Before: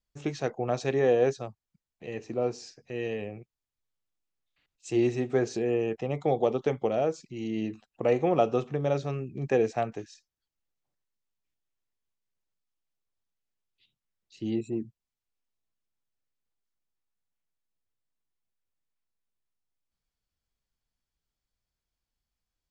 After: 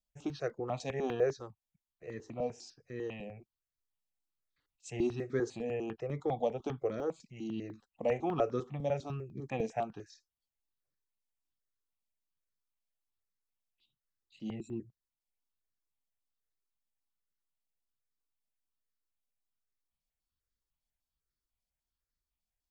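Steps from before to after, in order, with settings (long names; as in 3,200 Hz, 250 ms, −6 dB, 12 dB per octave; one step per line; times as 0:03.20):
step-sequenced phaser 10 Hz 370–2,800 Hz
level −4 dB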